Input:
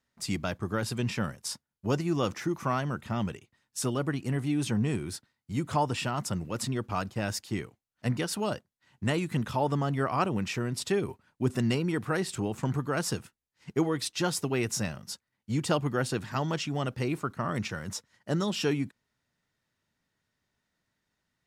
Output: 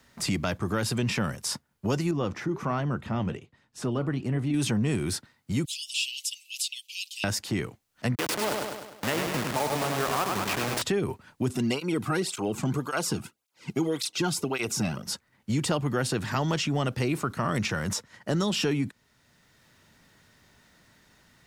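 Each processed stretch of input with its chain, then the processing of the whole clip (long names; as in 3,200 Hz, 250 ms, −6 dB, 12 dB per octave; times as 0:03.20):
0:02.11–0:04.54: low-pass filter 1,100 Hz 6 dB per octave + flanger 1.3 Hz, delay 0.1 ms, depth 7.7 ms, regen −80%
0:05.65–0:07.24: Butterworth high-pass 2,700 Hz 72 dB per octave + comb filter 6 ms, depth 95%
0:08.15–0:10.82: hold until the input has moved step −27 dBFS + high-pass filter 520 Hz 6 dB per octave + repeating echo 101 ms, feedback 44%, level −6 dB
0:11.53–0:15.06: notch filter 1,800 Hz, Q 6.2 + through-zero flanger with one copy inverted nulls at 1.8 Hz, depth 2.2 ms
whole clip: downward compressor 2.5 to 1, threshold −33 dBFS; transient designer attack −3 dB, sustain +2 dB; multiband upward and downward compressor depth 40%; level +8.5 dB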